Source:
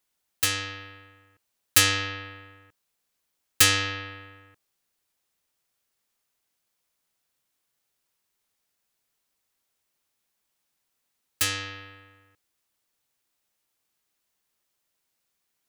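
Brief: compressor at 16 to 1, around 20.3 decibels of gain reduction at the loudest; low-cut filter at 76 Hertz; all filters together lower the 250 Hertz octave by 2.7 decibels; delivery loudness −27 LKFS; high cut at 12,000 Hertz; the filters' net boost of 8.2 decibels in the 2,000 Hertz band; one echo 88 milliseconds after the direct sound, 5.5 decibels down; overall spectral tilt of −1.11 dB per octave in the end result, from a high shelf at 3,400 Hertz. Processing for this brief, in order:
high-pass filter 76 Hz
low-pass filter 12,000 Hz
parametric band 250 Hz −3.5 dB
parametric band 2,000 Hz +8.5 dB
high-shelf EQ 3,400 Hz +5.5 dB
downward compressor 16 to 1, threshold −29 dBFS
single-tap delay 88 ms −5.5 dB
level +6 dB

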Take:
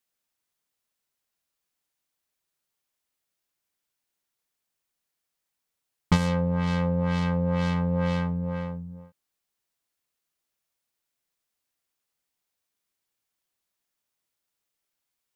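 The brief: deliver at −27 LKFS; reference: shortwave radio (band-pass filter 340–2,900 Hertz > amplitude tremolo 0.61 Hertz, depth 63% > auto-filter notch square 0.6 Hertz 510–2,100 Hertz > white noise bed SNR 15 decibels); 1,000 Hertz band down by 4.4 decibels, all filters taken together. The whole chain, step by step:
band-pass filter 340–2,900 Hz
parametric band 1,000 Hz −5 dB
amplitude tremolo 0.61 Hz, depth 63%
auto-filter notch square 0.6 Hz 510–2,100 Hz
white noise bed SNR 15 dB
level +12.5 dB

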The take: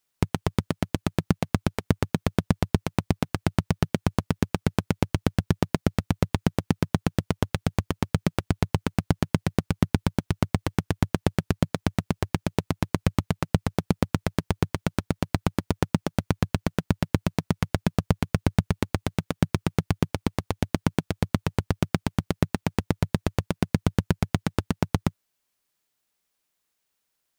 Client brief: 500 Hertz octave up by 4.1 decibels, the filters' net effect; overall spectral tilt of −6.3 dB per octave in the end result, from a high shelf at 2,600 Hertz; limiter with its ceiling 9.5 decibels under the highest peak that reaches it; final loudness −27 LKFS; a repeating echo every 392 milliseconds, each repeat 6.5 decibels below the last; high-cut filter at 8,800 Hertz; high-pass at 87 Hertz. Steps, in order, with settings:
high-pass filter 87 Hz
low-pass filter 8,800 Hz
parametric band 500 Hz +5 dB
high-shelf EQ 2,600 Hz +3.5 dB
brickwall limiter −12 dBFS
repeating echo 392 ms, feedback 47%, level −6.5 dB
level +6 dB

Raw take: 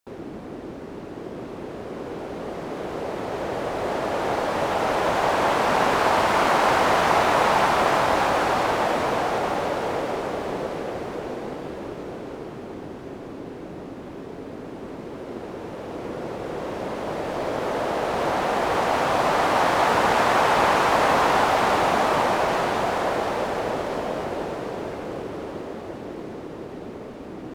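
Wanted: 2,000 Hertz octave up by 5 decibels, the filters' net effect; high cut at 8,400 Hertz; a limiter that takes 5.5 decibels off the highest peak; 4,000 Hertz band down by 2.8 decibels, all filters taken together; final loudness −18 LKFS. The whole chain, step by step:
low-pass filter 8,400 Hz
parametric band 2,000 Hz +8 dB
parametric band 4,000 Hz −7.5 dB
level +4.5 dB
brickwall limiter −6.5 dBFS

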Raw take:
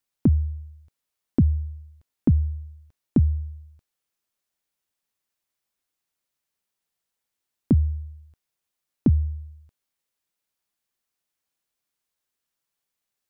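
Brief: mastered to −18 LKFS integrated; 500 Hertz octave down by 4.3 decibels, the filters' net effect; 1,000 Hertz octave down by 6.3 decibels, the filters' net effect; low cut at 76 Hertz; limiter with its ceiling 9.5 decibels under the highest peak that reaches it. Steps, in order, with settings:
high-pass filter 76 Hz
parametric band 500 Hz −6 dB
parametric band 1,000 Hz −6 dB
level +14 dB
brickwall limiter −7 dBFS

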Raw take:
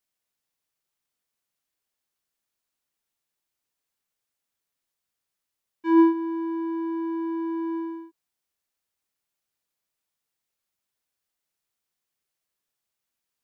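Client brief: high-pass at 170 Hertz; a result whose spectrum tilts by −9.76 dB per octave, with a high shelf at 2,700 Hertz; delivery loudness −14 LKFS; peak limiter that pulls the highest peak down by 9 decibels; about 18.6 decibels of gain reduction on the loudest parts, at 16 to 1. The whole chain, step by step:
high-pass filter 170 Hz
high-shelf EQ 2,700 Hz +3.5 dB
downward compressor 16 to 1, threshold −31 dBFS
level +25.5 dB
brickwall limiter −8 dBFS

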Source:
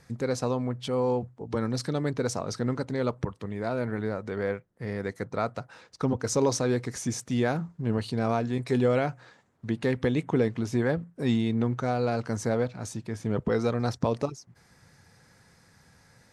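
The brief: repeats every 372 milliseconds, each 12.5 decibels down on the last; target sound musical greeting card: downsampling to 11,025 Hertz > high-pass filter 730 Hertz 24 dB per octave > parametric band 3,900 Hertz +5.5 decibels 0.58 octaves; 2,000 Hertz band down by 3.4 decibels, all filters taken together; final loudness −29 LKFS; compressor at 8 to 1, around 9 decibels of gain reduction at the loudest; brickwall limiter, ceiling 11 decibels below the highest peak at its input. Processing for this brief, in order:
parametric band 2,000 Hz −5 dB
downward compressor 8 to 1, threshold −29 dBFS
brickwall limiter −29 dBFS
repeating echo 372 ms, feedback 24%, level −12.5 dB
downsampling to 11,025 Hz
high-pass filter 730 Hz 24 dB per octave
parametric band 3,900 Hz +5.5 dB 0.58 octaves
level +20 dB

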